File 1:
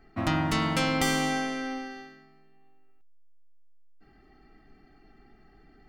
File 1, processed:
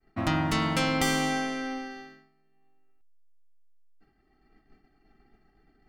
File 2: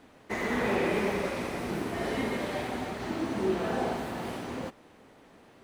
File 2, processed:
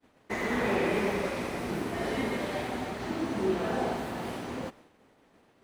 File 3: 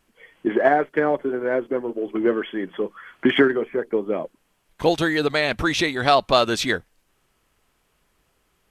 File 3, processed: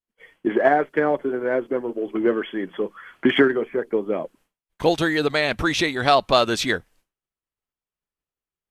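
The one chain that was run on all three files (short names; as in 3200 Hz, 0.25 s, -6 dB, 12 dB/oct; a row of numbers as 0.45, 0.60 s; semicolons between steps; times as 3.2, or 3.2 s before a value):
expander -49 dBFS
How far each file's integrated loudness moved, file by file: 0.0, 0.0, 0.0 LU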